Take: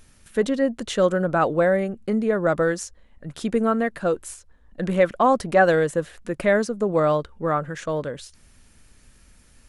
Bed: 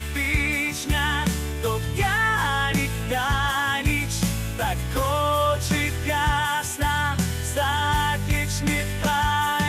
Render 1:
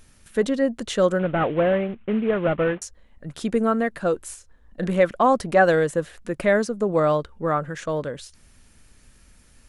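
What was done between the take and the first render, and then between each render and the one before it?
1.19–2.82 s: CVSD coder 16 kbps; 4.28–4.88 s: doubling 34 ms -12 dB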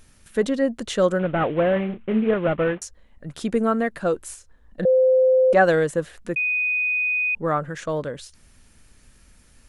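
1.73–2.34 s: doubling 32 ms -6.5 dB; 4.85–5.53 s: bleep 517 Hz -13 dBFS; 6.36–7.35 s: bleep 2.49 kHz -19.5 dBFS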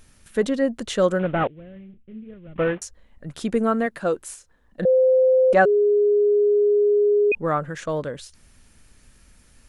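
1.47–2.56 s: amplifier tone stack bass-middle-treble 10-0-1; 3.86–4.82 s: bass shelf 94 Hz -10.5 dB; 5.65–7.32 s: bleep 413 Hz -14.5 dBFS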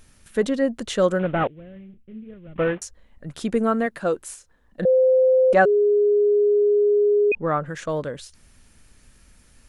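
6.62–7.66 s: Bessel low-pass 4.2 kHz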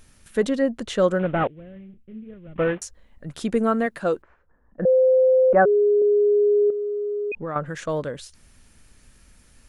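0.62–2.69 s: treble shelf 4.8 kHz -6 dB; 4.22–6.02 s: low-pass 1.6 kHz 24 dB/octave; 6.70–7.56 s: compression 3:1, threshold -28 dBFS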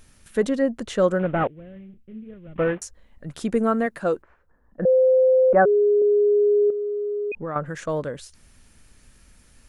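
dynamic bell 3.5 kHz, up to -4 dB, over -47 dBFS, Q 1.3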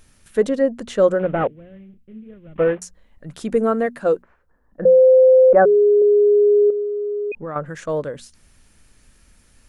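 hum notches 60/120/180/240 Hz; dynamic bell 490 Hz, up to +6 dB, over -30 dBFS, Q 1.8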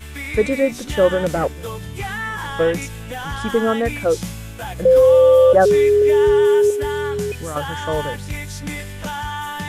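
add bed -5 dB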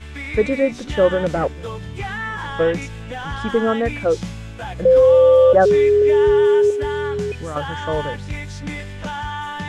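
distance through air 89 m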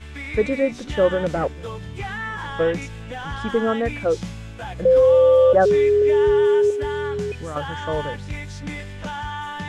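trim -2.5 dB

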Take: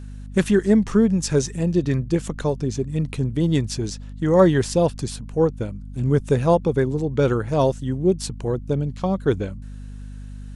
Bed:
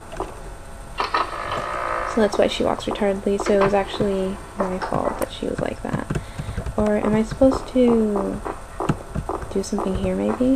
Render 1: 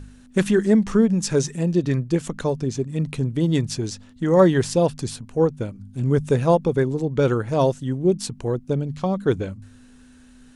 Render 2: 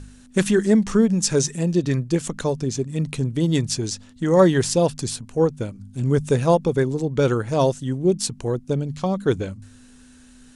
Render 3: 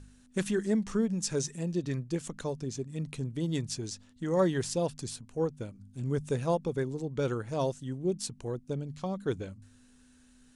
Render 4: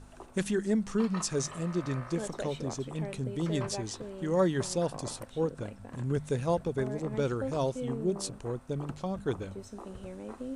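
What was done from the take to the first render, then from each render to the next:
de-hum 50 Hz, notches 4
low-pass 9.5 kHz 12 dB/octave; treble shelf 5.6 kHz +11.5 dB
trim -11.5 dB
add bed -20.5 dB

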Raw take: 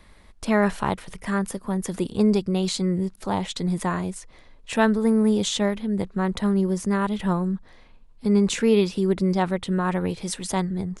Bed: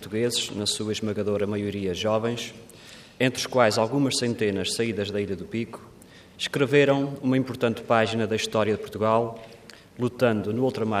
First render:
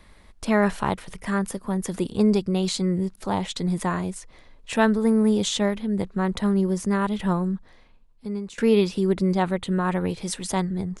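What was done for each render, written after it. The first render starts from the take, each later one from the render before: 7.44–8.58 s: fade out, to -20 dB; 9.26–10.05 s: band-stop 5.4 kHz, Q 5.3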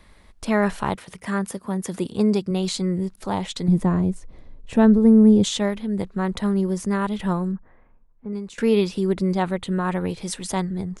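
0.95–2.51 s: high-pass 85 Hz; 3.68–5.44 s: tilt shelf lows +9.5 dB, about 640 Hz; 7.52–8.33 s: low-pass 1.8 kHz 24 dB/octave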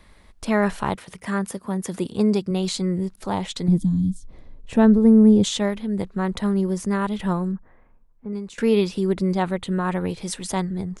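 3.78–4.25 s: time-frequency box 320–3100 Hz -27 dB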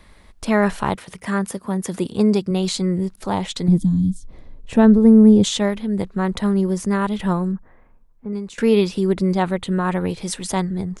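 trim +3 dB; peak limiter -3 dBFS, peak gain reduction 1 dB

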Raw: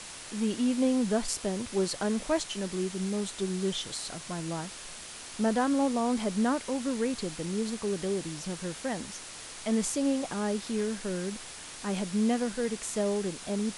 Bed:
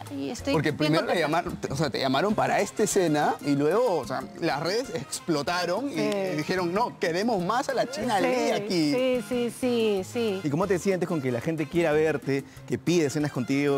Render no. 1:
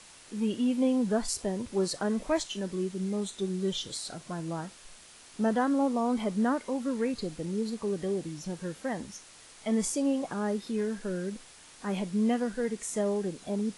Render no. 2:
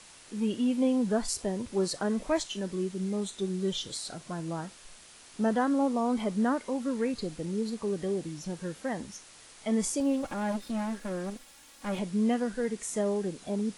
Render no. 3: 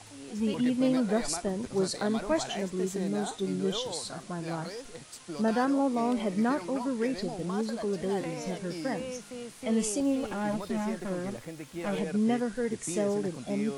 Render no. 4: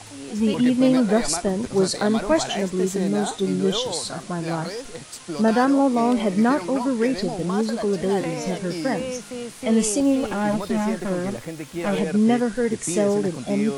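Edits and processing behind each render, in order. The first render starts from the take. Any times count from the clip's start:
noise print and reduce 9 dB
10.00–11.99 s: comb filter that takes the minimum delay 3.6 ms
add bed -14 dB
trim +8.5 dB

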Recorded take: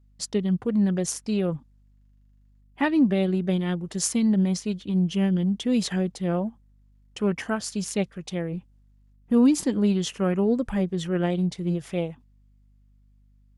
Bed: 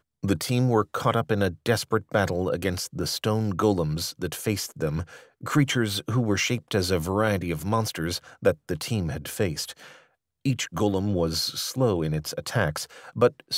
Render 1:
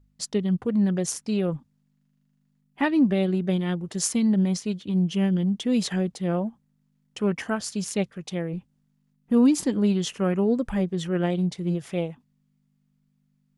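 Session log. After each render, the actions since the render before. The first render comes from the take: de-hum 50 Hz, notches 2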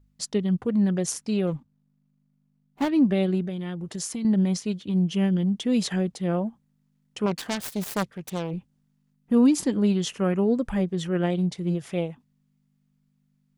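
1.47–2.89 s: median filter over 25 samples; 3.46–4.25 s: compression, threshold -28 dBFS; 7.26–8.51 s: self-modulated delay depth 0.91 ms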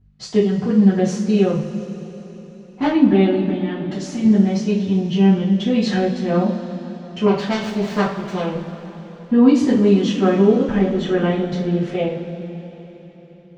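distance through air 180 m; two-slope reverb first 0.38 s, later 4.1 s, from -18 dB, DRR -9.5 dB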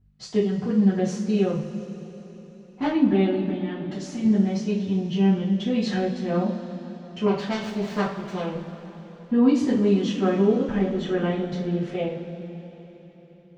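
trim -6 dB

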